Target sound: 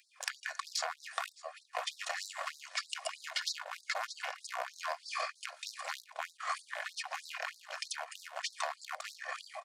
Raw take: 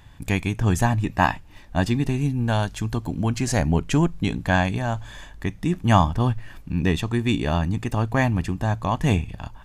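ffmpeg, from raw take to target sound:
-filter_complex "[0:a]aecho=1:1:605|1210:0.0944|0.0274,acrossover=split=300|780[s0][s1][s2];[s2]acompressor=threshold=0.01:ratio=16[s3];[s0][s1][s3]amix=inputs=3:normalize=0,agate=range=0.126:threshold=0.0141:ratio=16:detection=peak,volume=18.8,asoftclip=hard,volume=0.0531,asetrate=30296,aresample=44100,atempo=1.45565,aecho=1:1:2.8:0.43,acrossover=split=180|980|5800[s4][s5][s6][s7];[s4]acompressor=threshold=0.0224:ratio=4[s8];[s5]acompressor=threshold=0.00708:ratio=4[s9];[s6]acompressor=threshold=0.00355:ratio=4[s10];[s7]acompressor=threshold=0.00126:ratio=4[s11];[s8][s9][s10][s11]amix=inputs=4:normalize=0,equalizer=f=220:w=0.77:g=-13,asoftclip=type=tanh:threshold=0.0299,afftfilt=real='re*gte(b*sr/1024,490*pow(3800/490,0.5+0.5*sin(2*PI*3.2*pts/sr)))':imag='im*gte(b*sr/1024,490*pow(3800/490,0.5+0.5*sin(2*PI*3.2*pts/sr)))':win_size=1024:overlap=0.75,volume=6.31"

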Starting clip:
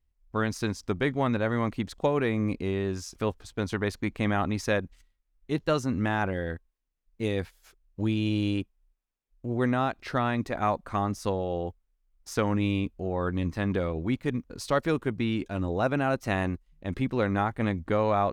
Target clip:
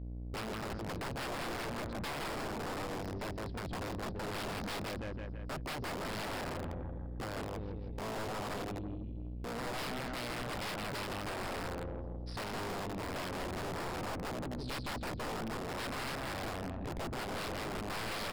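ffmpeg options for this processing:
-filter_complex "[0:a]afwtdn=0.0398,equalizer=f=440:w=6.1:g=-4.5,asplit=2[s0][s1];[s1]alimiter=limit=0.075:level=0:latency=1:release=10,volume=0.794[s2];[s0][s2]amix=inputs=2:normalize=0,acompressor=threshold=0.00631:ratio=2.5,aecho=1:1:165|330|495|660|825|990:0.596|0.292|0.143|0.0701|0.0343|0.0168,aeval=exprs='val(0)+0.00316*(sin(2*PI*60*n/s)+sin(2*PI*2*60*n/s)/2+sin(2*PI*3*60*n/s)/3+sin(2*PI*4*60*n/s)/4+sin(2*PI*5*60*n/s)/5)':c=same,aresample=11025,aeval=exprs='(mod(63.1*val(0)+1,2)-1)/63.1':c=same,aresample=44100,aeval=exprs='(tanh(316*val(0)+0.35)-tanh(0.35))/316':c=same,volume=4.22"

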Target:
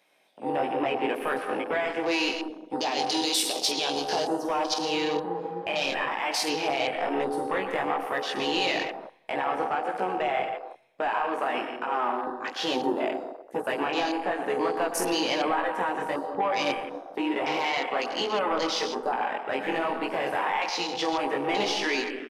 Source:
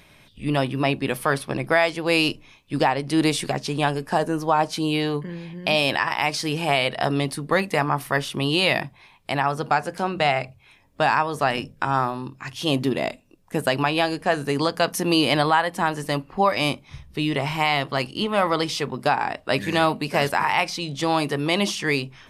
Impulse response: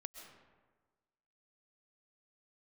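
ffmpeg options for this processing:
-filter_complex "[0:a]flanger=delay=16:depth=6.2:speed=1.1,asettb=1/sr,asplit=3[s0][s1][s2];[s0]atrim=end=2.814[s3];[s1]atrim=start=2.81:end=4.74,asetpts=PTS-STARTPTS,afade=t=in:d=0.004:c=qsin,afade=t=out:st=1.926:d=0.004:c=qsin,highshelf=f=2500:t=q:w=1.5:g=11[s4];[s2]atrim=start=4.736[s5];[s3][s4]acrossfade=d=0.004:c1=hsin:c2=qsin[s6];[s6][s5]acrossfade=d=0.004:c1=qsin:c2=hsin,asplit=2[s7][s8];[s8]acompressor=threshold=0.0282:ratio=6,volume=1.33[s9];[s7][s9]amix=inputs=2:normalize=0,alimiter=limit=0.251:level=0:latency=1:release=111,acrossover=split=250|5100[s10][s11][s12];[s10]aeval=exprs='val(0)*sin(2*PI*640*n/s)':c=same[s13];[s11]asoftclip=type=tanh:threshold=0.106[s14];[s12]aecho=1:1:47|78:0.668|0.316[s15];[s13][s14][s15]amix=inputs=3:normalize=0[s16];[1:a]atrim=start_sample=2205,asetrate=52920,aresample=44100[s17];[s16][s17]afir=irnorm=-1:irlink=0,afwtdn=0.01,volume=1.88"

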